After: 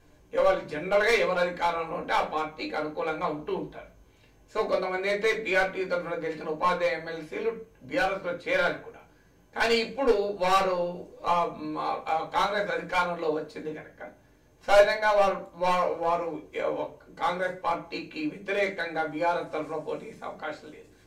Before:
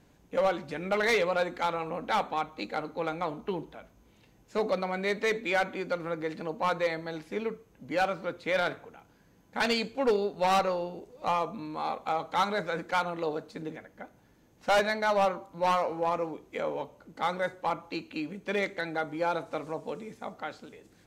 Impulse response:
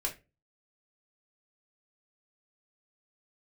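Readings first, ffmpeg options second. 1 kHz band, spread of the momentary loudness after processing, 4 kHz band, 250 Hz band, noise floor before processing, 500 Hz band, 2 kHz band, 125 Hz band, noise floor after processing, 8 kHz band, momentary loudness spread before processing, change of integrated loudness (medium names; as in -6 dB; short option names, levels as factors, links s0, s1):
+2.0 dB, 13 LU, +1.5 dB, +0.5 dB, -62 dBFS, +3.5 dB, +3.5 dB, -0.5 dB, -59 dBFS, +1.0 dB, 13 LU, +3.0 dB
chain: -filter_complex "[1:a]atrim=start_sample=2205[s0];[0:a][s0]afir=irnorm=-1:irlink=0"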